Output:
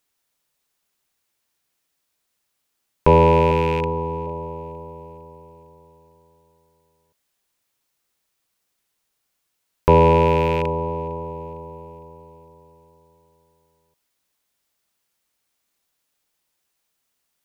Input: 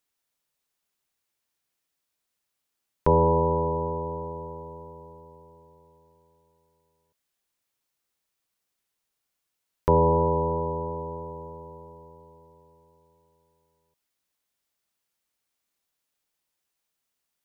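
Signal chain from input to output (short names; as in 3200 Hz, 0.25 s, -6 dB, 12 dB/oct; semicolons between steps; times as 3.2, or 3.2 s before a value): rattling part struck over -30 dBFS, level -24 dBFS; 3.51–4.27 Butterworth band-stop 640 Hz, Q 3.1; on a send: thinning echo 0.456 s, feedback 49%, high-pass 1200 Hz, level -22.5 dB; on the sum: gain +6.5 dB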